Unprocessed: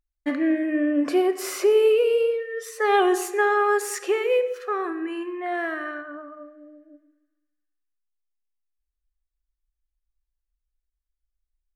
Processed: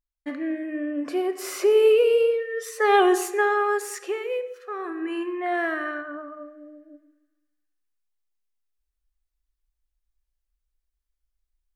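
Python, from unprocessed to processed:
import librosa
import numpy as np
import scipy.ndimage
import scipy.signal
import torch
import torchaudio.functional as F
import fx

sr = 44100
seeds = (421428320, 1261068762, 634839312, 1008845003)

y = fx.gain(x, sr, db=fx.line((1.03, -6.5), (1.9, 1.5), (3.11, 1.5), (4.61, -9.0), (5.15, 2.0)))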